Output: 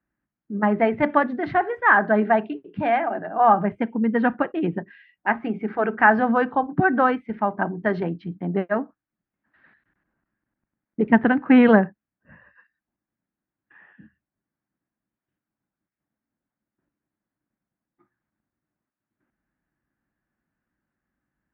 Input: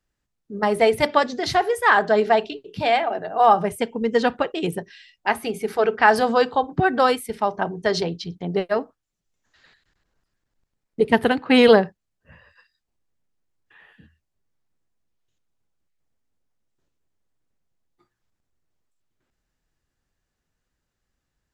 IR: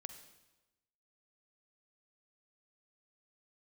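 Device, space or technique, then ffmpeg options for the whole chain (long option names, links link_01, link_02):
bass cabinet: -af "highpass=64,equalizer=frequency=82:width_type=q:width=4:gain=-10,equalizer=frequency=210:width_type=q:width=4:gain=7,equalizer=frequency=300:width_type=q:width=4:gain=7,equalizer=frequency=450:width_type=q:width=4:gain=-7,equalizer=frequency=1600:width_type=q:width=4:gain=4,lowpass=frequency=2100:width=0.5412,lowpass=frequency=2100:width=1.3066,volume=-1dB"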